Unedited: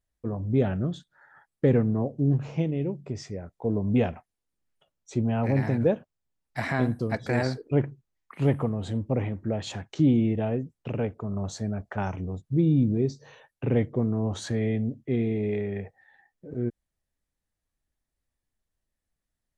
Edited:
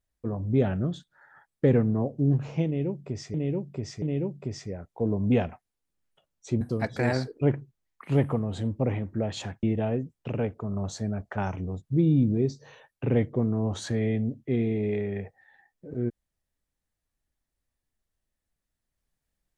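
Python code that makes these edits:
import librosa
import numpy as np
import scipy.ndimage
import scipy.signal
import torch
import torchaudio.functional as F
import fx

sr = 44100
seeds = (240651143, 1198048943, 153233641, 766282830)

y = fx.edit(x, sr, fx.repeat(start_s=2.66, length_s=0.68, count=3),
    fx.cut(start_s=5.25, length_s=1.66),
    fx.cut(start_s=9.93, length_s=0.3), tone=tone)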